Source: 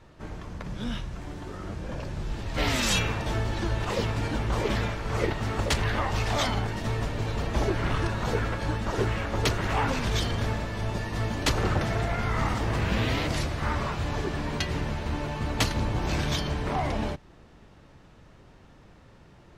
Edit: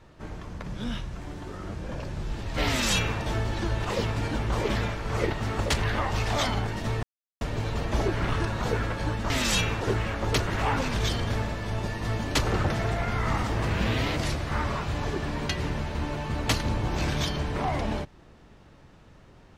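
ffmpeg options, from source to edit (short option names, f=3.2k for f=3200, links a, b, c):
-filter_complex "[0:a]asplit=4[a][b][c][d];[a]atrim=end=7.03,asetpts=PTS-STARTPTS,afade=t=out:st=7.026:d=0.004:c=hsin,apad=pad_dur=0.38[e];[b]atrim=start=7.03:end=8.922,asetpts=PTS-STARTPTS,afade=t=in:d=0.004:c=hsin[f];[c]atrim=start=2.678:end=3.192[g];[d]atrim=start=8.918[h];[e][f]concat=n=2:v=0:a=1[i];[i][g]acrossfade=d=0.004:c1=hsin:c2=hsin[j];[j][h]acrossfade=d=0.004:c1=hsin:c2=hsin"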